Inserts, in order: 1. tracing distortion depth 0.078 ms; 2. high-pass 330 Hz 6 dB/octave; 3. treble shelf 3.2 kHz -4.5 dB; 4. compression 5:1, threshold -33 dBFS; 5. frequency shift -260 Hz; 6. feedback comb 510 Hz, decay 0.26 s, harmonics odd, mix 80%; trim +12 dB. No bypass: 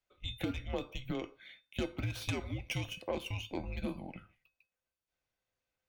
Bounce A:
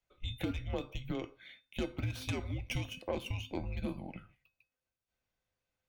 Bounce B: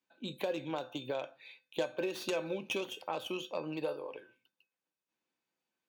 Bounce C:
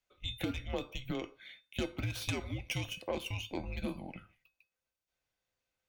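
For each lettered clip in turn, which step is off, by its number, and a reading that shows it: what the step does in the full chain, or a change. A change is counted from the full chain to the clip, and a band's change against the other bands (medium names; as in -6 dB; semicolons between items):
2, 125 Hz band +2.5 dB; 5, 125 Hz band -12.0 dB; 3, 8 kHz band +3.0 dB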